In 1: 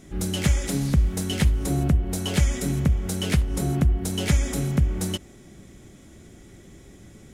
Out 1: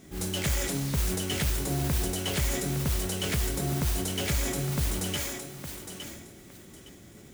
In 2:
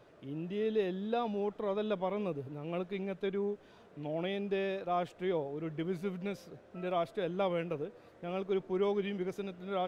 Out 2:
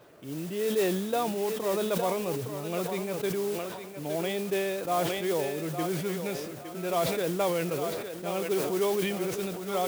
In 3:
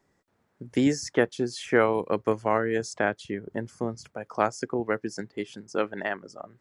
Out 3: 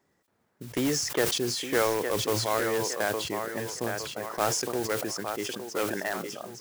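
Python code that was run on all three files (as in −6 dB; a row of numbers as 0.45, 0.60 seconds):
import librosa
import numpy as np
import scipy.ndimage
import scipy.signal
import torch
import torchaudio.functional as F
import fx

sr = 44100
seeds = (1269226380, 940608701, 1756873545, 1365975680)

p1 = fx.dynamic_eq(x, sr, hz=220.0, q=1.9, threshold_db=-41.0, ratio=4.0, max_db=-6)
p2 = fx.mod_noise(p1, sr, seeds[0], snr_db=14)
p3 = fx.highpass(p2, sr, hz=88.0, slope=6)
p4 = fx.echo_thinned(p3, sr, ms=862, feedback_pct=27, hz=330.0, wet_db=-8.0)
p5 = (np.mod(10.0 ** (18.0 / 20.0) * p4 + 1.0, 2.0) - 1.0) / 10.0 ** (18.0 / 20.0)
p6 = p4 + (p5 * librosa.db_to_amplitude(-7.0))
p7 = fx.sustainer(p6, sr, db_per_s=37.0)
y = p7 * 10.0 ** (-30 / 20.0) / np.sqrt(np.mean(np.square(p7)))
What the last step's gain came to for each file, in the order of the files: −6.0, +1.5, −4.5 decibels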